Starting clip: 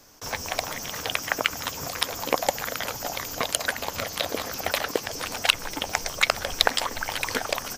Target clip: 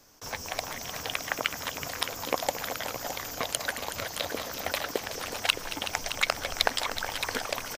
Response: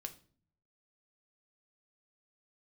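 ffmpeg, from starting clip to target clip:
-af "aecho=1:1:223|373|617:0.211|0.266|0.282,volume=-5dB"

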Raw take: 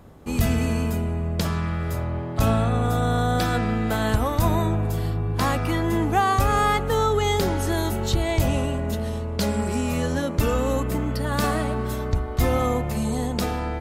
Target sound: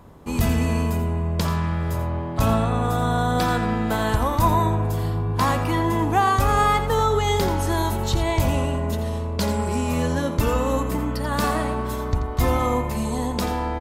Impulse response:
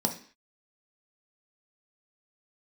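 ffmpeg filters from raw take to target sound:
-af "equalizer=frequency=990:width_type=o:width=0.24:gain=9,aecho=1:1:85:0.299"

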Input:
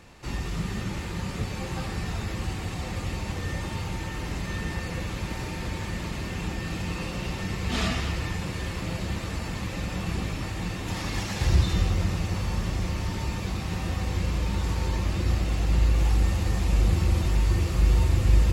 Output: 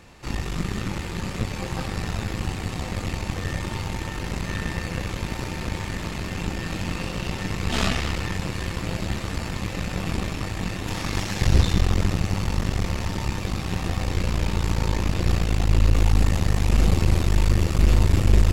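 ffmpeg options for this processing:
ffmpeg -i in.wav -af "aeval=exprs='0.422*(cos(1*acos(clip(val(0)/0.422,-1,1)))-cos(1*PI/2))+0.0596*(cos(8*acos(clip(val(0)/0.422,-1,1)))-cos(8*PI/2))':channel_layout=same,volume=2dB" out.wav

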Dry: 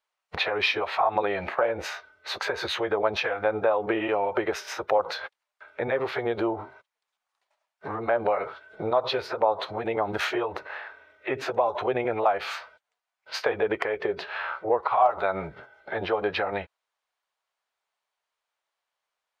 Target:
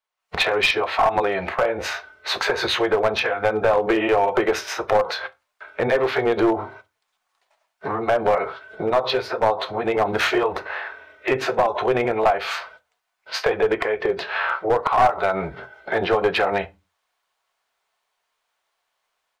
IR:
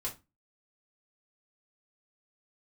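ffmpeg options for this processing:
-filter_complex "[0:a]dynaudnorm=framelen=150:gausssize=3:maxgain=12.5dB,asplit=2[link_01][link_02];[1:a]atrim=start_sample=2205[link_03];[link_02][link_03]afir=irnorm=-1:irlink=0,volume=-8dB[link_04];[link_01][link_04]amix=inputs=2:normalize=0,aeval=exprs='clip(val(0),-1,0.376)':channel_layout=same,volume=-5.5dB"

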